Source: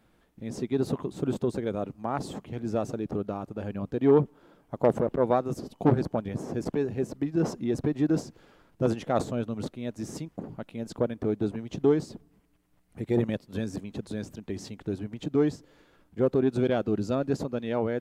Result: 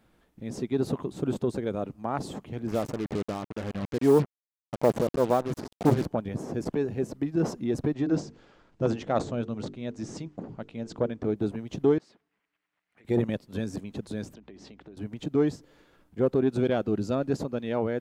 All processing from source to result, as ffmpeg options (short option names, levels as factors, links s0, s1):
-filter_complex "[0:a]asettb=1/sr,asplit=3[s0][s1][s2];[s0]atrim=end=2.674[s3];[s1]atrim=start=2.67:end=6.06,asetpts=PTS-STARTPTS,afade=t=in:d=0.004:c=qsin,afade=t=out:st=3.386:d=0.004:c=qsin,acrusher=bits=5:mix=0:aa=0.5,adynamicequalizer=threshold=0.01:dfrequency=1800:dqfactor=0.7:tfrequency=1800:tqfactor=0.7:attack=5:release=100:ratio=0.375:range=1.5:mode=cutabove:tftype=highshelf[s4];[s2]atrim=start=6.056[s5];[s3][s4]acrossfade=d=0.004:c1=hsin:c2=qsin[s6];[s6][s5]acrossfade=d=0.004:c1=qsin:c2=hsin,asettb=1/sr,asplit=3[s7][s8][s9];[s7]atrim=end=7.934[s10];[s8]atrim=start=7.93:end=11.36,asetpts=PTS-STARTPTS,afade=t=in:d=0.004:c=qsin,afade=t=out:st=3.426:d=0.004:c=qsin,lowpass=f=7400:w=0.5412,lowpass=f=7400:w=1.3066,bandreject=f=50:t=h:w=6,bandreject=f=100:t=h:w=6,bandreject=f=150:t=h:w=6,bandreject=f=200:t=h:w=6,bandreject=f=250:t=h:w=6,bandreject=f=300:t=h:w=6,bandreject=f=350:t=h:w=6,bandreject=f=400:t=h:w=6,bandreject=f=450:t=h:w=6[s11];[s9]atrim=start=11.356[s12];[s10][s11]acrossfade=d=0.004:c1=hsin:c2=qsin[s13];[s13][s12]acrossfade=d=0.004:c1=qsin:c2=hsin,asettb=1/sr,asplit=3[s14][s15][s16];[s14]atrim=end=11.984[s17];[s15]atrim=start=11.98:end=13.05,asetpts=PTS-STARTPTS,afade=t=in:d=0.004:c=qsin,afade=t=out:st=1.066:d=0.004:c=qsin,bandpass=f=2000:t=q:w=1.3,acompressor=threshold=0.00178:ratio=4:attack=3.2:release=140:knee=1:detection=peak[s18];[s16]atrim=start=13.046[s19];[s17][s18]acrossfade=d=0.004:c1=hsin:c2=qsin[s20];[s20][s19]acrossfade=d=0.004:c1=qsin:c2=hsin,asettb=1/sr,asplit=3[s21][s22][s23];[s21]atrim=end=14.344[s24];[s22]atrim=start=14.34:end=14.97,asetpts=PTS-STARTPTS,afade=t=in:d=0.004:c=qsin,afade=t=out:st=0.626:d=0.004:c=qsin,highpass=200,lowpass=4200,acompressor=threshold=0.00631:ratio=6:attack=3.2:release=140:knee=1:detection=peak,aeval=exprs='val(0)+0.000794*(sin(2*PI*60*n/s)+sin(2*PI*2*60*n/s)/2+sin(2*PI*3*60*n/s)/3+sin(2*PI*4*60*n/s)/4+sin(2*PI*5*60*n/s)/5)':c=same[s25];[s23]atrim=start=14.966[s26];[s24][s25]acrossfade=d=0.004:c1=hsin:c2=qsin[s27];[s27][s26]acrossfade=d=0.004:c1=qsin:c2=hsin"